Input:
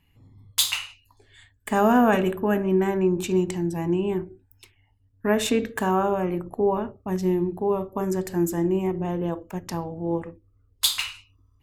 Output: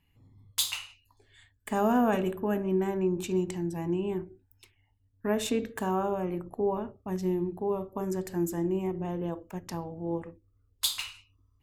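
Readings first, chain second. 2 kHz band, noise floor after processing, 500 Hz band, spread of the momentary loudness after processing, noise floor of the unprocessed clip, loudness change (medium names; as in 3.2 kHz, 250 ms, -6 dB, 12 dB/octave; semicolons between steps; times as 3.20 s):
-9.0 dB, -70 dBFS, -6.0 dB, 10 LU, -64 dBFS, -6.5 dB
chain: dynamic bell 1.8 kHz, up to -4 dB, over -37 dBFS, Q 1.1; trim -6 dB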